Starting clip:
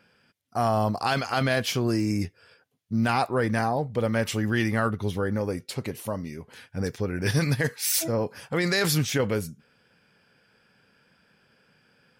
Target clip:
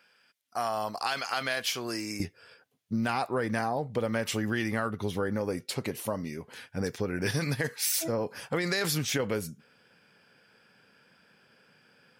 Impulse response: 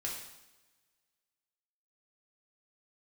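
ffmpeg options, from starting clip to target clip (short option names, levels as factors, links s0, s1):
-af "asetnsamples=n=441:p=0,asendcmd='2.2 highpass f 170',highpass=f=1200:p=1,acompressor=threshold=0.0447:ratio=6,volume=1.19"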